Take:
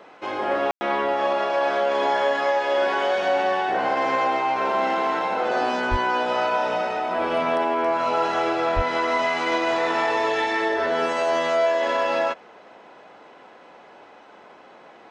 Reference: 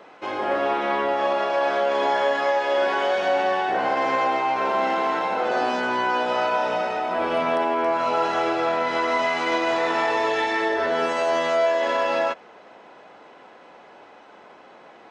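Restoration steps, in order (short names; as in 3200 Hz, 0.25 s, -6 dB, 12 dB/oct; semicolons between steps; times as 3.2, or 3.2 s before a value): 5.9–6.02 HPF 140 Hz 24 dB/oct; 8.75–8.87 HPF 140 Hz 24 dB/oct; room tone fill 0.71–0.81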